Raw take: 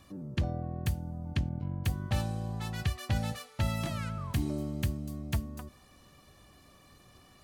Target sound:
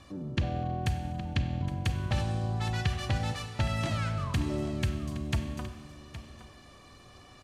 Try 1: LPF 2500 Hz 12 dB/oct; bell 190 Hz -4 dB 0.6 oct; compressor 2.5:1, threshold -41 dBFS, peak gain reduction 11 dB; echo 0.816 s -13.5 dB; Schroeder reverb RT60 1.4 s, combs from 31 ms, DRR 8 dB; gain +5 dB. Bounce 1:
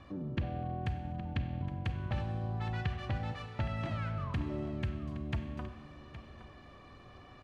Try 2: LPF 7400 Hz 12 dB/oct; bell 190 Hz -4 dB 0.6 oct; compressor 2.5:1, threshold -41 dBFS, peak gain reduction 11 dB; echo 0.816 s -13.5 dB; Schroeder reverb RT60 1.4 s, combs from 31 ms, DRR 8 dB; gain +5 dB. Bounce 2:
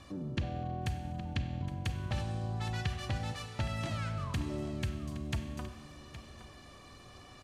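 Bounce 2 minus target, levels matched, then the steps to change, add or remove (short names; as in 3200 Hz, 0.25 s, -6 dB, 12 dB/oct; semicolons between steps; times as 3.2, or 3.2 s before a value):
compressor: peak gain reduction +5.5 dB
change: compressor 2.5:1, threshold -31.5 dBFS, peak gain reduction 5 dB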